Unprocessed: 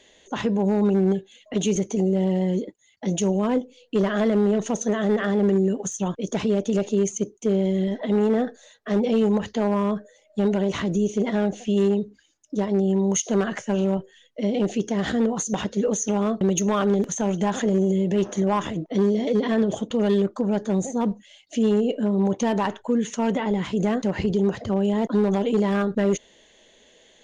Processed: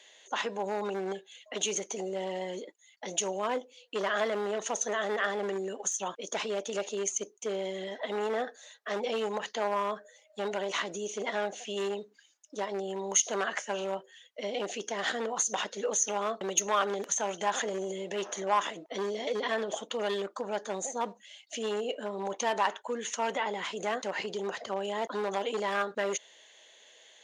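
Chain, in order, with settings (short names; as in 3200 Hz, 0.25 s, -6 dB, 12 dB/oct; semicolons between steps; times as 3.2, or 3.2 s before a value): HPF 730 Hz 12 dB/oct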